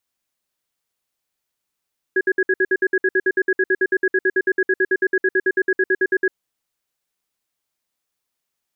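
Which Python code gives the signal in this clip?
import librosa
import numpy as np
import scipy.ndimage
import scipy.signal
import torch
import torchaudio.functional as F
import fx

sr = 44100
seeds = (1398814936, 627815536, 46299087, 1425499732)

y = fx.cadence(sr, length_s=4.12, low_hz=378.0, high_hz=1660.0, on_s=0.05, off_s=0.06, level_db=-16.5)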